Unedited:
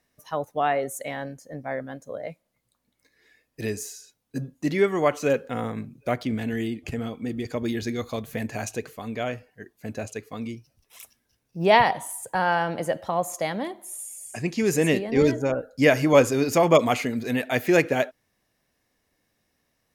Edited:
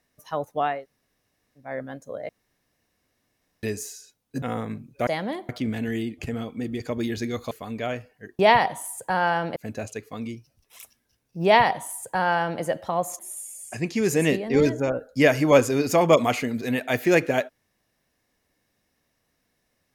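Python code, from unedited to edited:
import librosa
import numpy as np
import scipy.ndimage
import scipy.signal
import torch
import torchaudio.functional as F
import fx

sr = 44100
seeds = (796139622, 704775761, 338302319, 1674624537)

y = fx.edit(x, sr, fx.room_tone_fill(start_s=0.74, length_s=0.93, crossfade_s=0.24),
    fx.room_tone_fill(start_s=2.29, length_s=1.34),
    fx.cut(start_s=4.42, length_s=1.07),
    fx.cut(start_s=8.16, length_s=0.72),
    fx.duplicate(start_s=11.64, length_s=1.17, to_s=9.76),
    fx.move(start_s=13.39, length_s=0.42, to_s=6.14), tone=tone)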